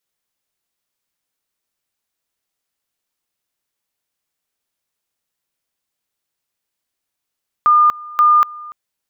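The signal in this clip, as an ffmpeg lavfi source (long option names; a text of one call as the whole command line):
ffmpeg -f lavfi -i "aevalsrc='pow(10,(-7.5-22*gte(mod(t,0.53),0.24))/20)*sin(2*PI*1210*t)':duration=1.06:sample_rate=44100" out.wav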